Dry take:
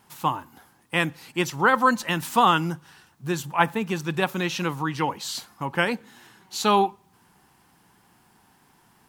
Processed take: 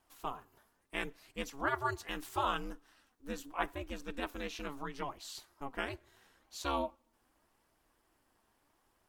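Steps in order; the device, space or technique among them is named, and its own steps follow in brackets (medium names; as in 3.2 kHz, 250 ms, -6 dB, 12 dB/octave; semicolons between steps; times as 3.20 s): alien voice (ring modulator 140 Hz; flange 0.77 Hz, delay 1.2 ms, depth 3.4 ms, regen +74%); trim -7.5 dB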